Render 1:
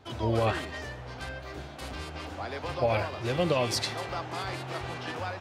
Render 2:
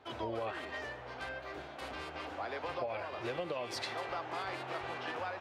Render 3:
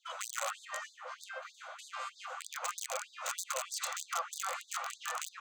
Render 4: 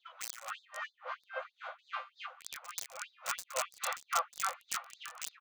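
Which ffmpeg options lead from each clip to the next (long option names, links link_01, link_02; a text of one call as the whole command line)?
ffmpeg -i in.wav -af "bass=frequency=250:gain=-13,treble=frequency=4000:gain=-10,acompressor=threshold=-33dB:ratio=12,volume=-1dB" out.wav
ffmpeg -i in.wav -af "aeval=exprs='(mod(33.5*val(0)+1,2)-1)/33.5':channel_layout=same,superequalizer=7b=2.82:10b=2.82:15b=3.55,afftfilt=real='re*gte(b*sr/1024,480*pow(3600/480,0.5+0.5*sin(2*PI*3.2*pts/sr)))':imag='im*gte(b*sr/1024,480*pow(3600/480,0.5+0.5*sin(2*PI*3.2*pts/sr)))':win_size=1024:overlap=0.75" out.wav
ffmpeg -i in.wav -filter_complex "[0:a]acrossover=split=940|3200|3500[link_01][link_02][link_03][link_04];[link_03]aecho=1:1:1183:0.112[link_05];[link_04]acrusher=bits=4:mix=0:aa=0.5[link_06];[link_01][link_02][link_05][link_06]amix=inputs=4:normalize=0,aeval=exprs='val(0)*pow(10,-21*(0.5-0.5*cos(2*PI*3.6*n/s))/20)':channel_layout=same,volume=5.5dB" out.wav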